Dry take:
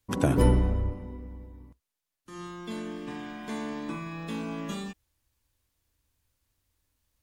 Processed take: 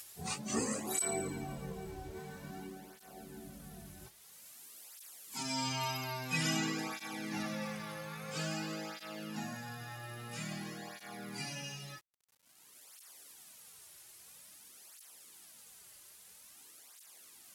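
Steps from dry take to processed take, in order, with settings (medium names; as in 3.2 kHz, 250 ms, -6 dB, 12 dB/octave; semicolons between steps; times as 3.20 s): Doppler pass-by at 2.40 s, 11 m/s, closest 4.4 m; RIAA curve recording; time-frequency box 0.89–1.10 s, 1.1–9.7 kHz +7 dB; peaking EQ 64 Hz -2.5 dB 0.76 oct; upward compressor, threshold -45 dBFS; plain phase-vocoder stretch 1.8×; bit crusher 11-bit; speed mistake 45 rpm record played at 33 rpm; cancelling through-zero flanger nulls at 0.5 Hz, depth 4.5 ms; trim +12 dB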